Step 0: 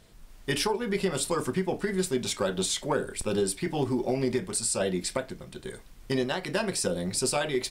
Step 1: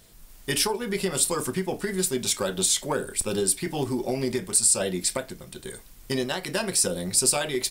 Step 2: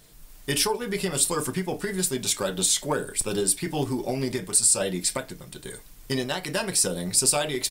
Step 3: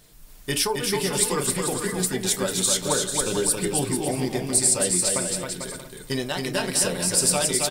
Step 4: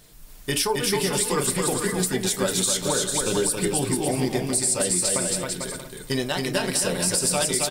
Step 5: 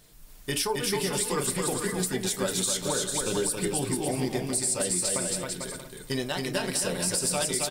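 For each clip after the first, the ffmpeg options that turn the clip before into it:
ffmpeg -i in.wav -af "aemphasis=mode=production:type=50kf" out.wav
ffmpeg -i in.wav -af "aecho=1:1:6.7:0.33" out.wav
ffmpeg -i in.wav -af "aecho=1:1:270|445.5|559.6|633.7|681.9:0.631|0.398|0.251|0.158|0.1" out.wav
ffmpeg -i in.wav -af "alimiter=limit=-14dB:level=0:latency=1:release=78,volume=2dB" out.wav
ffmpeg -i in.wav -af "asoftclip=type=hard:threshold=-13.5dB,volume=-4.5dB" out.wav

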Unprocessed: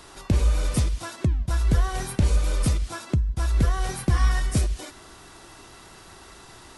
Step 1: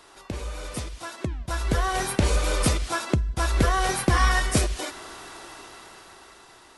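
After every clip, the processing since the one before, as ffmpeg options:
ffmpeg -i in.wav -af "bass=frequency=250:gain=-11,treble=frequency=4000:gain=-3,dynaudnorm=framelen=290:gausssize=11:maxgain=13.5dB,volume=-3.5dB" out.wav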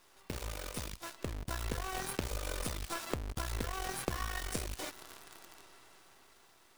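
ffmpeg -i in.wav -af "acompressor=threshold=-27dB:ratio=10,aeval=exprs='0.158*(cos(1*acos(clip(val(0)/0.158,-1,1)))-cos(1*PI/2))+0.0224*(cos(3*acos(clip(val(0)/0.158,-1,1)))-cos(3*PI/2))+0.0224*(cos(4*acos(clip(val(0)/0.158,-1,1)))-cos(4*PI/2))':channel_layout=same,acrusher=bits=7:dc=4:mix=0:aa=0.000001,volume=-4.5dB" out.wav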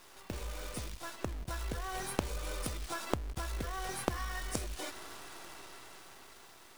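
ffmpeg -i in.wav -af "aeval=exprs='if(lt(val(0),0),0.251*val(0),val(0))':channel_layout=same,volume=7.5dB" out.wav

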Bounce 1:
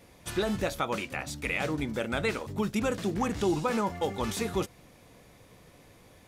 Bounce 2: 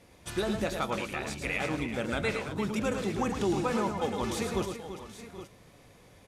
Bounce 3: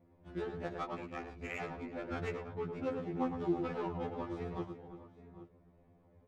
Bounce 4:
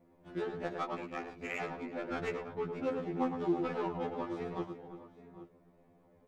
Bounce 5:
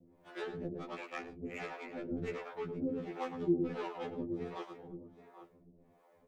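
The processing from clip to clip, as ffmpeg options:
ffmpeg -i in.wav -filter_complex "[0:a]lowpass=12000,asplit=2[link_01][link_02];[link_02]aecho=0:1:108|339|780|818:0.473|0.299|0.141|0.211[link_03];[link_01][link_03]amix=inputs=2:normalize=0,volume=-2dB" out.wav
ffmpeg -i in.wav -af "adynamicsmooth=sensitivity=1.5:basefreq=890,afftfilt=real='re*2*eq(mod(b,4),0)':imag='im*2*eq(mod(b,4),0)':win_size=2048:overlap=0.75,volume=-4dB" out.wav
ffmpeg -i in.wav -filter_complex "[0:a]equalizer=frequency=72:width_type=o:width=1.2:gain=-15,asplit=2[link_01][link_02];[link_02]volume=30dB,asoftclip=hard,volume=-30dB,volume=-7dB[link_03];[link_01][link_03]amix=inputs=2:normalize=0" out.wav
ffmpeg -i in.wav -filter_complex "[0:a]acrossover=split=320|520|1500[link_01][link_02][link_03][link_04];[link_03]acompressor=threshold=-51dB:ratio=6[link_05];[link_01][link_02][link_05][link_04]amix=inputs=4:normalize=0,acrossover=split=470[link_06][link_07];[link_06]aeval=exprs='val(0)*(1-1/2+1/2*cos(2*PI*1.4*n/s))':channel_layout=same[link_08];[link_07]aeval=exprs='val(0)*(1-1/2-1/2*cos(2*PI*1.4*n/s))':channel_layout=same[link_09];[link_08][link_09]amix=inputs=2:normalize=0,volume=4.5dB" out.wav

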